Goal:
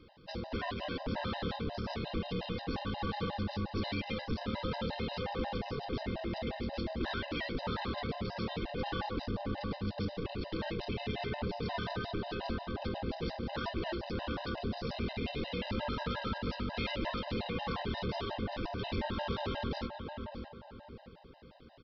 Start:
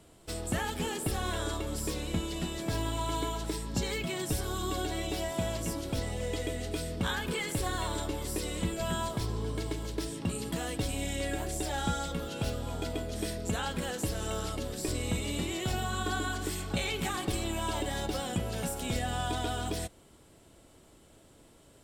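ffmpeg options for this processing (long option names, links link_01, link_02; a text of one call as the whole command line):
ffmpeg -i in.wav -filter_complex "[0:a]aresample=11025,asoftclip=type=tanh:threshold=-33dB,aresample=44100,aeval=exprs='val(0)*sin(2*PI*150*n/s)':channel_layout=same,asplit=2[link_01][link_02];[link_02]adelay=610,lowpass=frequency=2200:poles=1,volume=-6dB,asplit=2[link_03][link_04];[link_04]adelay=610,lowpass=frequency=2200:poles=1,volume=0.37,asplit=2[link_05][link_06];[link_06]adelay=610,lowpass=frequency=2200:poles=1,volume=0.37,asplit=2[link_07][link_08];[link_08]adelay=610,lowpass=frequency=2200:poles=1,volume=0.37[link_09];[link_01][link_03][link_05][link_07][link_09]amix=inputs=5:normalize=0,afftfilt=real='re*gt(sin(2*PI*5.6*pts/sr)*(1-2*mod(floor(b*sr/1024/520),2)),0)':imag='im*gt(sin(2*PI*5.6*pts/sr)*(1-2*mod(floor(b*sr/1024/520),2)),0)':win_size=1024:overlap=0.75,volume=6dB" out.wav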